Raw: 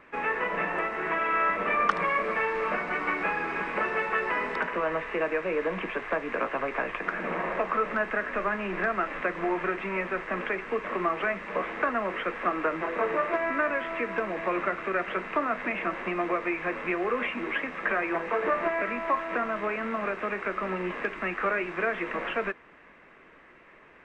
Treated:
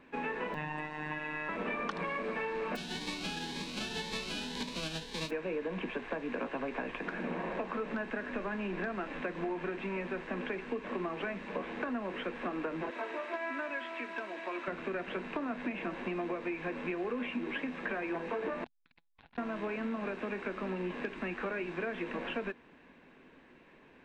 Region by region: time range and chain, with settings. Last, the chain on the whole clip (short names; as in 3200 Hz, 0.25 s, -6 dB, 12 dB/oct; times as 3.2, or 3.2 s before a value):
0.54–1.49 robotiser 152 Hz + comb 1.1 ms, depth 59%
2.75–5.29 spectral whitening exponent 0.1 + LPF 3300 Hz + cascading phaser rising 1.9 Hz
12.9–14.68 HPF 1100 Hz 6 dB/oct + comb 3.1 ms, depth 57%
18.64–19.38 differentiator + LPC vocoder at 8 kHz pitch kept + core saturation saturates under 1500 Hz
whole clip: thirty-one-band EQ 160 Hz +4 dB, 250 Hz +9 dB, 630 Hz -4 dB, 1250 Hz -11 dB, 2000 Hz -8 dB, 4000 Hz +6 dB; compressor, threshold -29 dBFS; gain -3 dB